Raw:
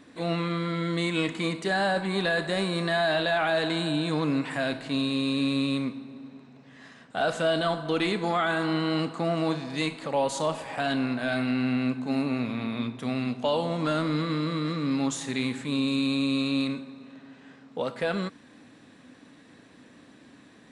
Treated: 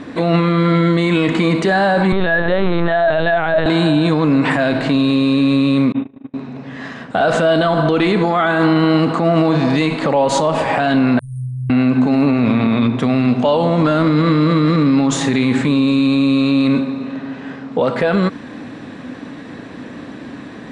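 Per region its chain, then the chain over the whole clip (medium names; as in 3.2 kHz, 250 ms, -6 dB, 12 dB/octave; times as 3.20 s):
2.12–3.66 s: band-stop 2.5 kHz + LPC vocoder at 8 kHz pitch kept
5.92–6.34 s: Chebyshev low-pass 3.7 kHz, order 8 + gate -41 dBFS, range -32 dB
11.19–11.70 s: Chebyshev band-stop 130–9100 Hz, order 5 + bass shelf 150 Hz -11.5 dB
whole clip: low-pass 8.1 kHz 12 dB/octave; treble shelf 3 kHz -11 dB; loudness maximiser +27 dB; trim -5.5 dB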